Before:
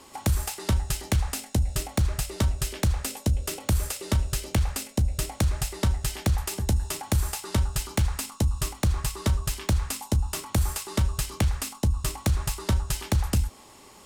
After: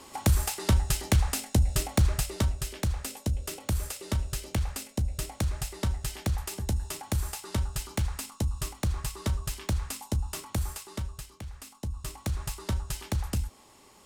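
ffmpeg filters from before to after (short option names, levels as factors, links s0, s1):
-af "volume=4.47,afade=t=out:st=2.09:d=0.52:silence=0.501187,afade=t=out:st=10.42:d=0.99:silence=0.223872,afade=t=in:st=11.41:d=1.07:silence=0.251189"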